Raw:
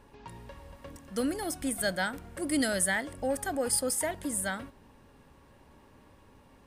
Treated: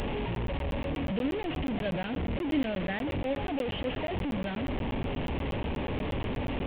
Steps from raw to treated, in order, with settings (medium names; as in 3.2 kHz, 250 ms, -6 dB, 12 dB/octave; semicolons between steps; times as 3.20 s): one-bit delta coder 16 kbps, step -24.5 dBFS; peaking EQ 1.4 kHz -13 dB 1.3 oct; crackling interface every 0.12 s, samples 512, zero, from 0.35 s; trim +1 dB